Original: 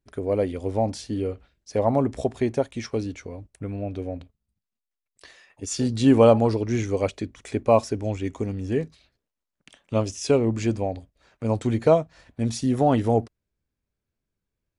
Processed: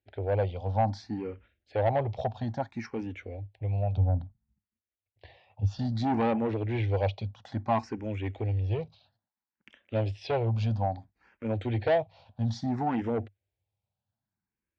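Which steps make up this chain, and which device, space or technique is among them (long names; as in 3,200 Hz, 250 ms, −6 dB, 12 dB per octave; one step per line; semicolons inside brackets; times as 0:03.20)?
0:03.97–0:05.79: RIAA equalisation playback
barber-pole phaser into a guitar amplifier (frequency shifter mixed with the dry sound +0.6 Hz; soft clipping −20 dBFS, distortion −10 dB; loudspeaker in its box 90–4,100 Hz, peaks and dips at 100 Hz +9 dB, 160 Hz −5 dB, 280 Hz −6 dB, 410 Hz −6 dB, 800 Hz +8 dB, 1,200 Hz −6 dB)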